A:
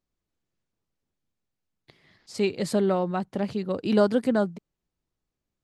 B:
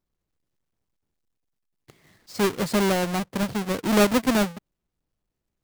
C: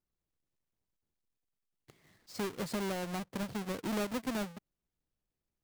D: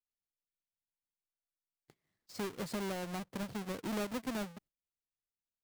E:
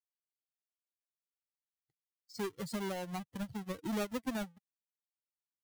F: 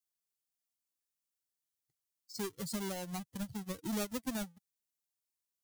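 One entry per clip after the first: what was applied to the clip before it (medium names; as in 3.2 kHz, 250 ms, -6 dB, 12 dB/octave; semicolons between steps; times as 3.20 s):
square wave that keeps the level; trim -2 dB
compression 3:1, threshold -27 dBFS, peak gain reduction 9.5 dB; trim -8 dB
gate -58 dBFS, range -17 dB; trim -2.5 dB
expander on every frequency bin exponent 2; trim +4 dB
tone controls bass +4 dB, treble +10 dB; trim -3 dB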